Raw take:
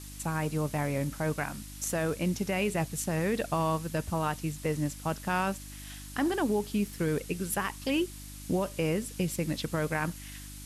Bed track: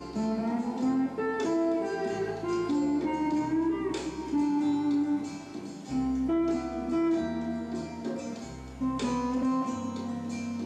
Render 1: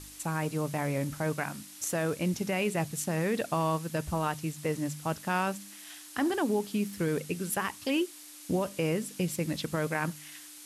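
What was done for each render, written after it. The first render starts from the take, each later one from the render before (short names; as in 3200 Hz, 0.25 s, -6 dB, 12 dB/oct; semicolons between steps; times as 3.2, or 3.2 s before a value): de-hum 50 Hz, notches 5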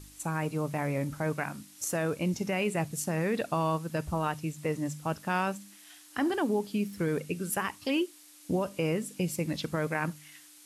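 noise print and reduce 6 dB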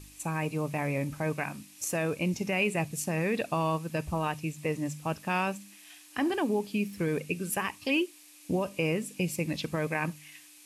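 bell 2500 Hz +8.5 dB 0.27 oct; notch 1400 Hz, Q 9.3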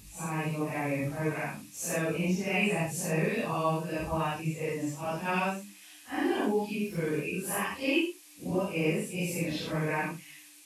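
phase scrambler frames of 0.2 s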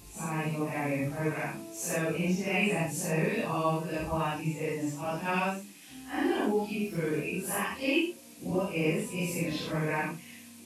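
add bed track -18.5 dB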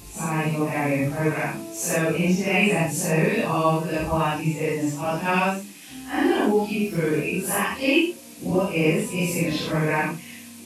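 gain +8 dB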